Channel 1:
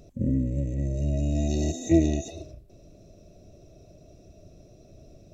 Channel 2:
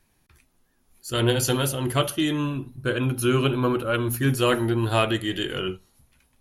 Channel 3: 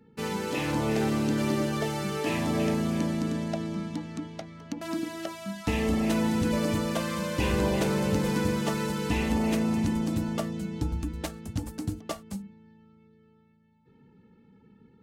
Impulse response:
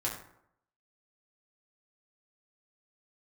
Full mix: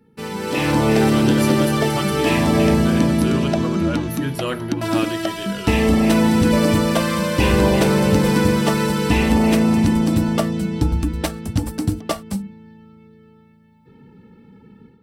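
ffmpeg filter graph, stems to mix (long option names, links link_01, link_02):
-filter_complex "[0:a]adelay=1900,volume=-6dB[link_01];[1:a]volume=-14dB,asplit=2[link_02][link_03];[2:a]volume=1.5dB[link_04];[link_03]apad=whole_len=319110[link_05];[link_01][link_05]sidechaincompress=threshold=-44dB:ratio=8:attack=16:release=307[link_06];[link_06][link_02][link_04]amix=inputs=3:normalize=0,bandreject=frequency=6700:width=8.4,dynaudnorm=framelen=330:gausssize=3:maxgain=10dB"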